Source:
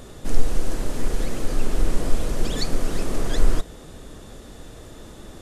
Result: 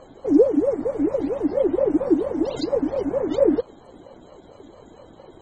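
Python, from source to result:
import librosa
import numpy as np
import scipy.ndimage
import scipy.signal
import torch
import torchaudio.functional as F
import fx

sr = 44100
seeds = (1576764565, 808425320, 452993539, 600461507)

y = fx.spec_topn(x, sr, count=64)
y = fx.ring_lfo(y, sr, carrier_hz=420.0, swing_pct=35, hz=4.4)
y = F.gain(torch.from_numpy(y), -2.5).numpy()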